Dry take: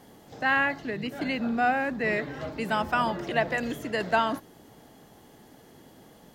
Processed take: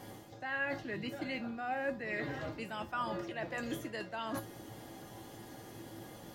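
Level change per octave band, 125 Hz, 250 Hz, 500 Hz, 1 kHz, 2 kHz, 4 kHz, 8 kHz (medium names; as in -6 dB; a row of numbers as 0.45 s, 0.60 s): -7.0 dB, -10.0 dB, -10.0 dB, -13.0 dB, -11.5 dB, -10.0 dB, -3.5 dB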